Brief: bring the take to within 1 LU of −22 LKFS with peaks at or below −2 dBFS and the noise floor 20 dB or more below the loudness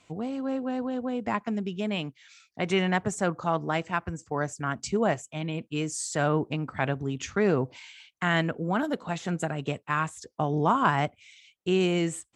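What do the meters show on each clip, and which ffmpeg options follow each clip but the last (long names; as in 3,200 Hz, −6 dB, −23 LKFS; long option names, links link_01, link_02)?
integrated loudness −28.5 LKFS; sample peak −9.5 dBFS; target loudness −22.0 LKFS
→ -af "volume=6.5dB"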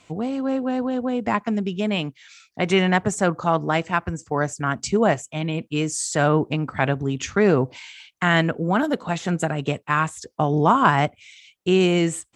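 integrated loudness −22.0 LKFS; sample peak −3.0 dBFS; background noise floor −62 dBFS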